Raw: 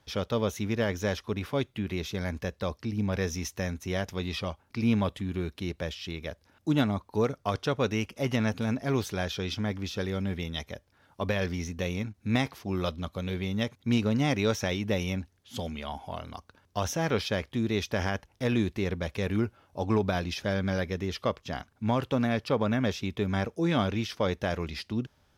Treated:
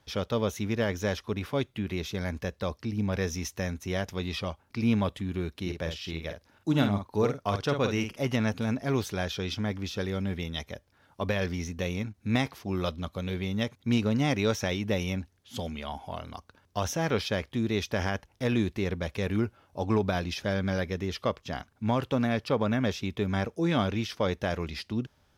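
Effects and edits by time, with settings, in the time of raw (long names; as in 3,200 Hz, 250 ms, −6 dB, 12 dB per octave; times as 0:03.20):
0:05.61–0:08.16: double-tracking delay 49 ms −6.5 dB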